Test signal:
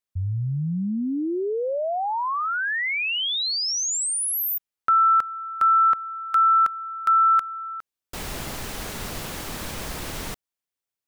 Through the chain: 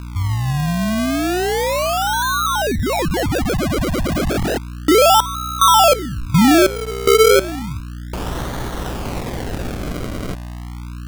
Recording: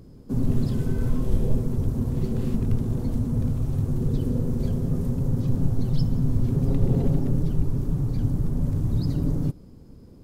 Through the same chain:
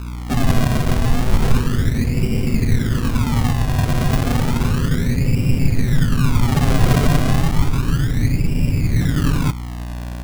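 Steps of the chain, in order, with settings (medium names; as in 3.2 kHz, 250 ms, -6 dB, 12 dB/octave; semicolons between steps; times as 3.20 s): hum 60 Hz, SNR 12 dB; decimation with a swept rate 34×, swing 100% 0.32 Hz; trim +6.5 dB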